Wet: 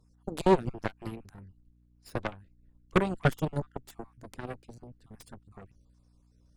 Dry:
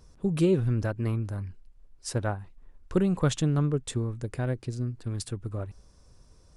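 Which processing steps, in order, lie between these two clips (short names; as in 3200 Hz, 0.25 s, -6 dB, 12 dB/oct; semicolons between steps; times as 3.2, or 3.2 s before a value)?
random spectral dropouts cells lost 31%; hum 60 Hz, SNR 20 dB; added harmonics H 6 -8 dB, 7 -15 dB, 8 -15 dB, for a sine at -12.5 dBFS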